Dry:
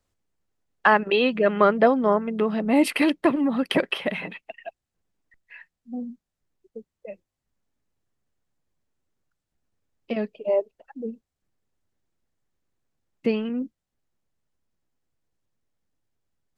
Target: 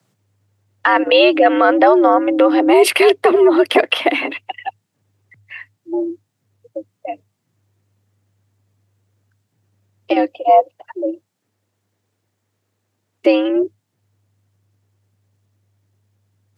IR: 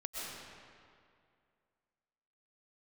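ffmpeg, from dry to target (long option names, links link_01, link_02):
-filter_complex "[0:a]asettb=1/sr,asplit=3[link_01][link_02][link_03];[link_01]atrim=end=10.194[link_04];[link_02]atrim=start=10.19:end=13.56,asetpts=PTS-STARTPTS,afade=type=in:duration=0.004:curve=qsin,afade=type=out:start_time=3.366:duration=0.004:curve=qsin,lowshelf=frequency=86:gain=-10[link_05];[link_03]atrim=start=13.556[link_06];[link_04][link_05]acrossfade=duration=0.004:curve1=hsin:curve2=qsin[link_07];[link_07][link_06]acrossfade=duration=0.004:curve1=qsin:curve2=hsin,afreqshift=100,alimiter=level_in=13dB:limit=-1dB:release=50:level=0:latency=1,volume=-1dB"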